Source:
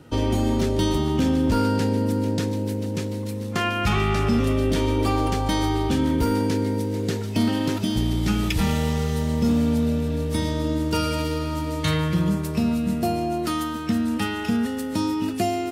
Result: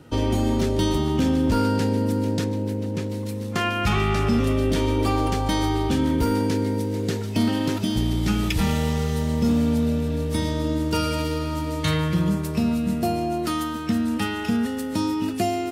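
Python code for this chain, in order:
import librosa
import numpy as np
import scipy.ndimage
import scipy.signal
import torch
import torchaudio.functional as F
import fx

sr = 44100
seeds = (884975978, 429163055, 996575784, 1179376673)

y = fx.high_shelf(x, sr, hz=3700.0, db=-7.0, at=(2.44, 3.1))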